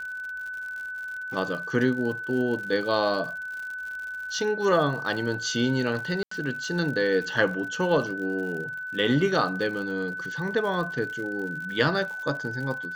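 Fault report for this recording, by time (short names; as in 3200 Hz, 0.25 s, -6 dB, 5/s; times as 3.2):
crackle 91/s -35 dBFS
tone 1500 Hz -32 dBFS
6.23–6.31 gap 84 ms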